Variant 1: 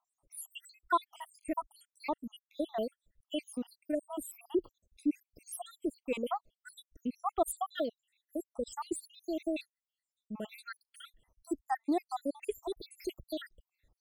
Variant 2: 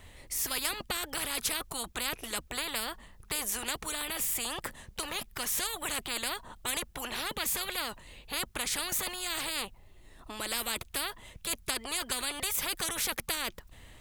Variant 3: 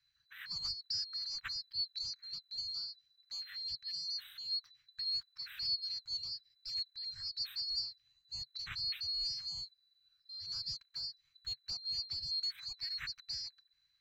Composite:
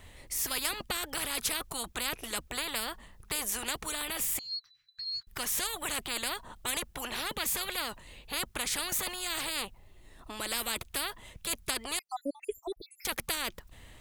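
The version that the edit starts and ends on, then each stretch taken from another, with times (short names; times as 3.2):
2
4.39–5.27 from 3
11.99–13.05 from 1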